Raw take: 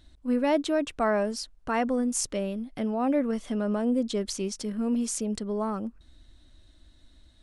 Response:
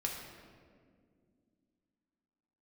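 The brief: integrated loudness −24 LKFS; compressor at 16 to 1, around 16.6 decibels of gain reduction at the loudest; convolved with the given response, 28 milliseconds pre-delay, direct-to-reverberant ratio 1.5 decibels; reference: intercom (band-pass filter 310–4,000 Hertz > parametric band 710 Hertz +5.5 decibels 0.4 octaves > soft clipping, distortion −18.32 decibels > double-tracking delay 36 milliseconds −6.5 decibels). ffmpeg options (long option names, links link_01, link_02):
-filter_complex "[0:a]acompressor=threshold=-37dB:ratio=16,asplit=2[link_01][link_02];[1:a]atrim=start_sample=2205,adelay=28[link_03];[link_02][link_03]afir=irnorm=-1:irlink=0,volume=-3.5dB[link_04];[link_01][link_04]amix=inputs=2:normalize=0,highpass=310,lowpass=4000,equalizer=frequency=710:width_type=o:width=0.4:gain=5.5,asoftclip=threshold=-31.5dB,asplit=2[link_05][link_06];[link_06]adelay=36,volume=-6.5dB[link_07];[link_05][link_07]amix=inputs=2:normalize=0,volume=17.5dB"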